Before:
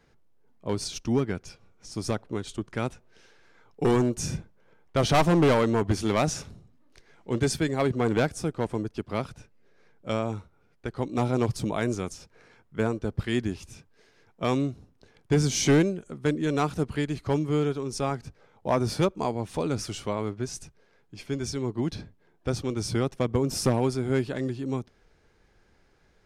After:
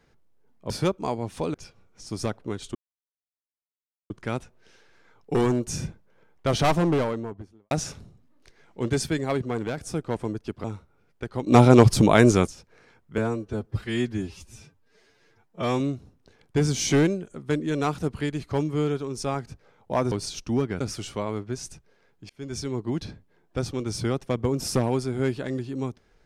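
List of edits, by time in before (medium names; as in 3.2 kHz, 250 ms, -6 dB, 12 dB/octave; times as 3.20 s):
0.70–1.39 s: swap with 18.87–19.71 s
2.60 s: insert silence 1.35 s
5.07–6.21 s: studio fade out
7.72–8.27 s: fade out, to -8 dB
9.14–10.27 s: delete
11.10–12.10 s: gain +11.5 dB
12.81–14.56 s: stretch 1.5×
21.20–21.49 s: fade in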